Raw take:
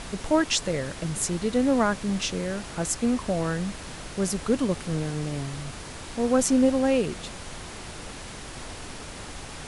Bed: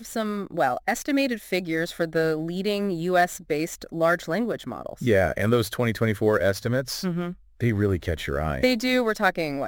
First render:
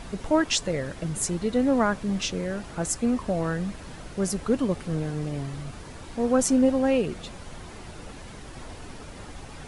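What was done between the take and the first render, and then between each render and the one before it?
denoiser 8 dB, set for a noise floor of -40 dBFS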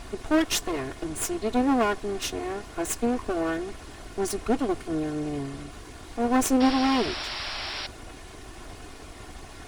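minimum comb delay 2.8 ms; 6.6–7.87 painted sound noise 550–5700 Hz -34 dBFS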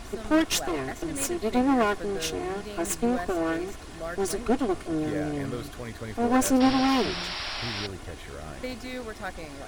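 add bed -14.5 dB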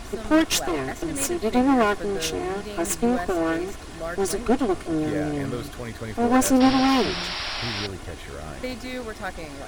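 gain +3.5 dB

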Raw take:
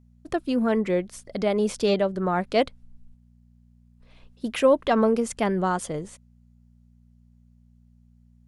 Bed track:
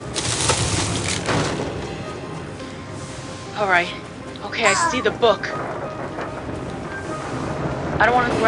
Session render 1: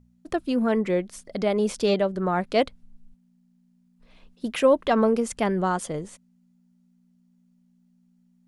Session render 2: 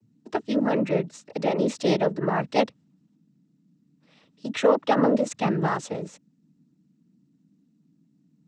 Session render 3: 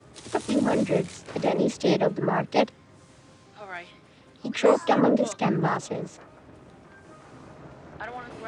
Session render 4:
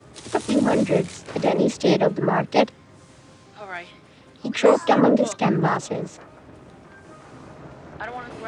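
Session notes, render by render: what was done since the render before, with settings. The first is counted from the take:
de-hum 60 Hz, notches 2
noise vocoder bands 12
add bed track -21 dB
gain +4 dB; limiter -3 dBFS, peak gain reduction 1.5 dB

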